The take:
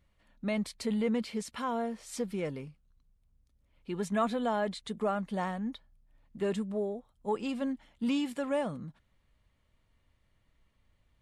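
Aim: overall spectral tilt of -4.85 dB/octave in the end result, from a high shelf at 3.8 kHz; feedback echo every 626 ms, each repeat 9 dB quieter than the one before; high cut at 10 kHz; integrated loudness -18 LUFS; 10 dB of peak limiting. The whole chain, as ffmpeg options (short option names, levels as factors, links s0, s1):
-af "lowpass=10000,highshelf=f=3800:g=6,alimiter=level_in=1.58:limit=0.0631:level=0:latency=1,volume=0.631,aecho=1:1:626|1252|1878|2504:0.355|0.124|0.0435|0.0152,volume=9.44"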